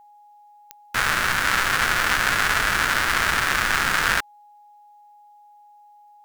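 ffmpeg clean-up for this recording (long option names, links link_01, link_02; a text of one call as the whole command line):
ffmpeg -i in.wav -af "adeclick=threshold=4,bandreject=frequency=830:width=30" out.wav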